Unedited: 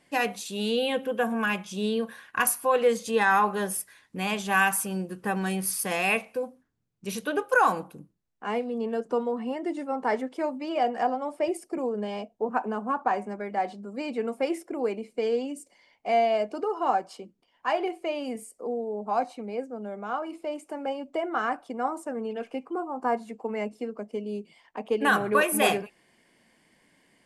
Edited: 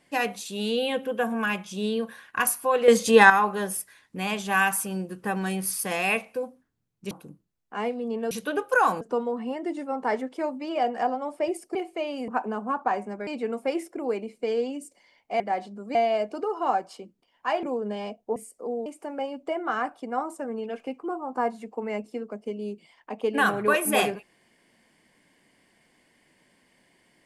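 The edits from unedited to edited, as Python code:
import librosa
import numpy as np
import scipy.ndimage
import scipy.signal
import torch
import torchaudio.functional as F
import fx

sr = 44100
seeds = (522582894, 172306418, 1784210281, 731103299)

y = fx.edit(x, sr, fx.clip_gain(start_s=2.88, length_s=0.42, db=9.0),
    fx.move(start_s=7.11, length_s=0.7, to_s=9.01),
    fx.swap(start_s=11.75, length_s=0.73, other_s=17.83, other_length_s=0.53),
    fx.move(start_s=13.47, length_s=0.55, to_s=16.15),
    fx.cut(start_s=18.86, length_s=1.67), tone=tone)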